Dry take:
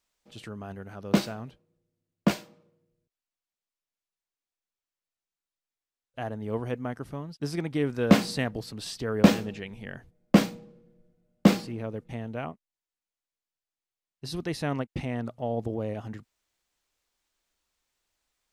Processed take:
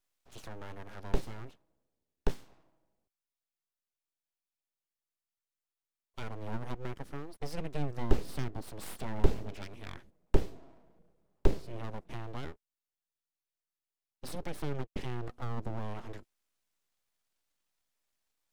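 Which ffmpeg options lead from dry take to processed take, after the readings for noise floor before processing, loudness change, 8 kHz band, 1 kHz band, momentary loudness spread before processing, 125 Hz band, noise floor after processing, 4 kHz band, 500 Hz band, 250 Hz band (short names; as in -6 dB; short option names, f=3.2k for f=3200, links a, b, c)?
under -85 dBFS, -11.0 dB, -11.0 dB, -8.0 dB, 20 LU, -7.0 dB, under -85 dBFS, -13.5 dB, -9.0 dB, -15.5 dB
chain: -filter_complex "[0:a]aeval=exprs='abs(val(0))':c=same,acrossover=split=420[a][b];[b]acompressor=threshold=-40dB:ratio=8[c];[a][c]amix=inputs=2:normalize=0,volume=-2dB"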